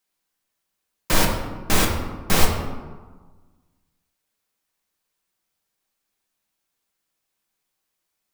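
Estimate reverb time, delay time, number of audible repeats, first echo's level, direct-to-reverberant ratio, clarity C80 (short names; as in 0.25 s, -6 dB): 1.4 s, none, none, none, 0.0 dB, 7.0 dB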